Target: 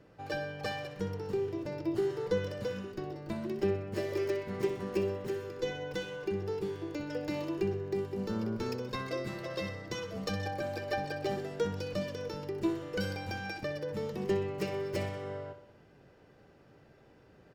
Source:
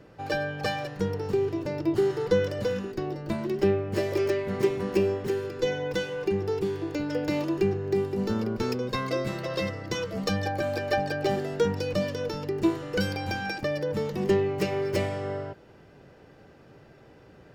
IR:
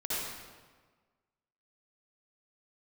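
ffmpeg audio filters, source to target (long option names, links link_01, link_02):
-af "aecho=1:1:63|126|189|252|315|378:0.282|0.155|0.0853|0.0469|0.0258|0.0142,volume=-7.5dB"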